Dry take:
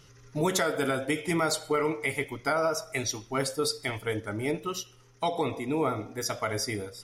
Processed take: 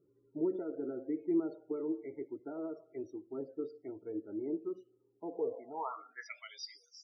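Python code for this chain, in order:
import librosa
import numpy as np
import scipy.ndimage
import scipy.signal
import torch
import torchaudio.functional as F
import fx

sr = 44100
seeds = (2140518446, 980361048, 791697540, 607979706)

y = fx.filter_sweep_bandpass(x, sr, from_hz=340.0, to_hz=6000.0, start_s=5.31, end_s=6.86, q=6.8)
y = fx.spec_topn(y, sr, count=32)
y = y * 10.0 ** (1.0 / 20.0)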